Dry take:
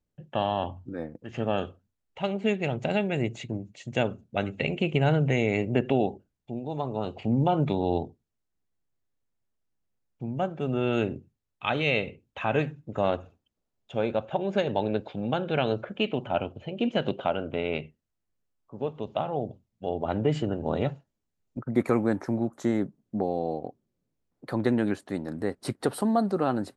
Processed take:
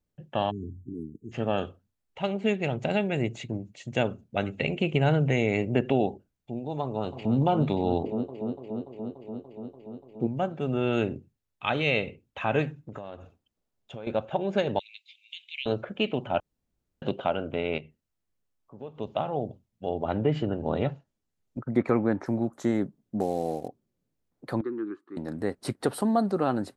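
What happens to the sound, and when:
0.50–1.32 s: spectral selection erased 450–6200 Hz
6.83–7.36 s: echo throw 290 ms, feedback 80%, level -9 dB
8.04–10.27 s: peaking EQ 390 Hz +13.5 dB 1.7 oct
12.79–14.07 s: compression 12:1, threshold -34 dBFS
14.79–15.66 s: steep high-pass 2.1 kHz 96 dB/octave
16.40–17.02 s: room tone
17.78–18.98 s: compression 1.5:1, threshold -51 dBFS
20.03–22.26 s: low-pass that closes with the level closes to 2.9 kHz, closed at -19.5 dBFS
23.20–23.68 s: CVSD coder 64 kbps
24.61–25.17 s: two resonant band-passes 640 Hz, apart 1.8 oct

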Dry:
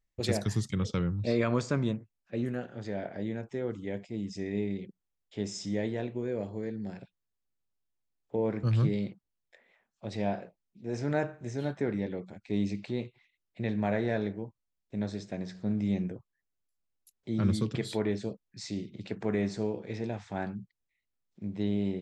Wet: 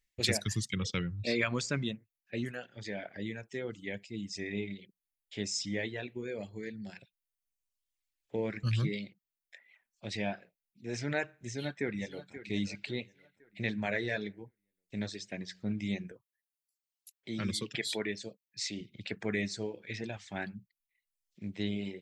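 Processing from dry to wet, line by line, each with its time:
11.44–12.34 s: echo throw 530 ms, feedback 45%, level -11 dB
16.12–18.81 s: high-pass 210 Hz 6 dB/octave
whole clip: reverb removal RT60 1.2 s; resonant high shelf 1.5 kHz +9 dB, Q 1.5; trim -3 dB

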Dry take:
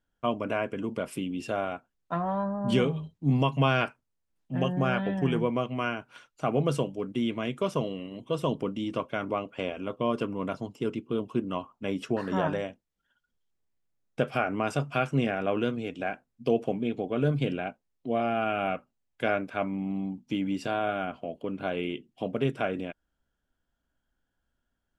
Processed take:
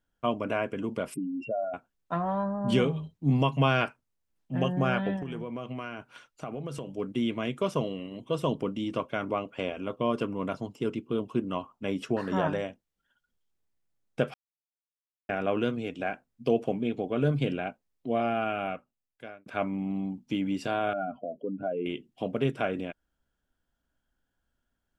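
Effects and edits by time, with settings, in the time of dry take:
1.14–1.74 s: spectral contrast enhancement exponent 3.2
5.16–6.93 s: compression 8:1, threshold -32 dBFS
14.34–15.29 s: mute
18.26–19.46 s: fade out
20.93–21.86 s: spectral contrast enhancement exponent 2.2

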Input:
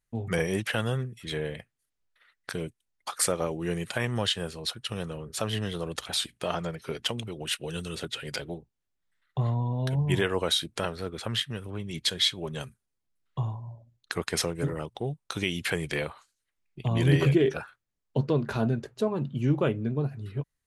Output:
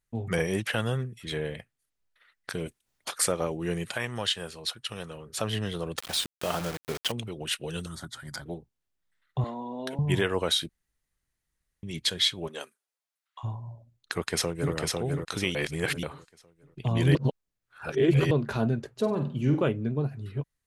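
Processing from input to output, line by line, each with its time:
2.65–3.12 s: spectral peaks clipped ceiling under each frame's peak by 17 dB
3.94–5.32 s: bass shelf 490 Hz -7.5 dB
5.98–7.12 s: word length cut 6-bit, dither none
7.86–8.46 s: static phaser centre 1.1 kHz, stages 4
9.44–9.99 s: steep high-pass 210 Hz
10.69–11.83 s: room tone
12.47–13.43 s: high-pass 250 Hz -> 1 kHz 24 dB/octave
14.13–14.74 s: echo throw 500 ms, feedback 35%, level -2.5 dB
15.55–16.03 s: reverse
17.15–18.31 s: reverse
18.93–19.63 s: flutter echo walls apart 8.2 m, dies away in 0.39 s

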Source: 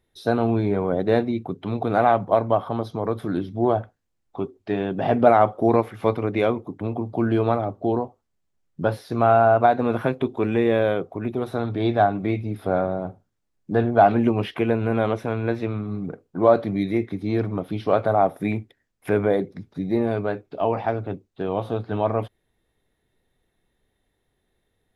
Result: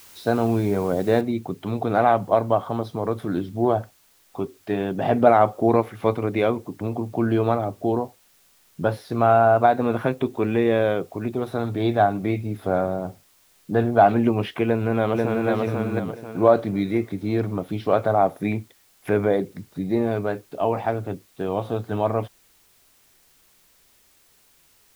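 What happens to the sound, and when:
1.21 s: noise floor step -48 dB -59 dB
14.65–15.50 s: echo throw 490 ms, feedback 35%, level -2 dB

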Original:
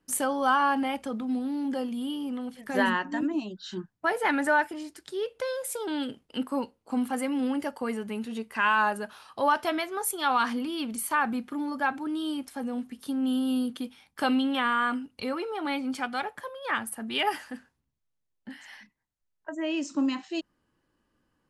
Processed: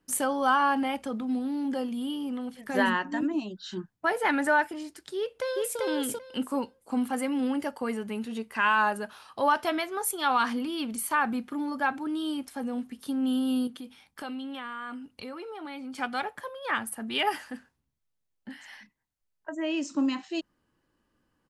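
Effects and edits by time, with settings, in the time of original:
5.17–5.79 s: echo throw 390 ms, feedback 15%, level -0.5 dB
13.67–15.98 s: compression 2.5:1, threshold -40 dBFS

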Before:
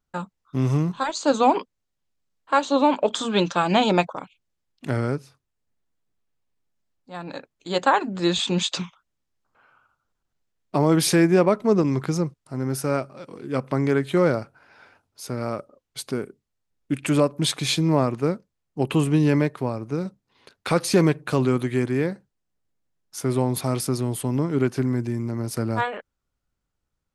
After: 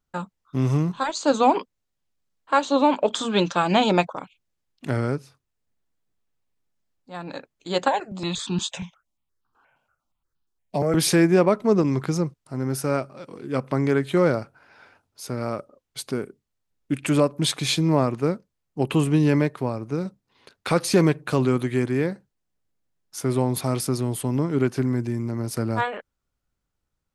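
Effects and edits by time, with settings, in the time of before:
7.88–10.95 s: stepped phaser 8.5 Hz 340–2100 Hz

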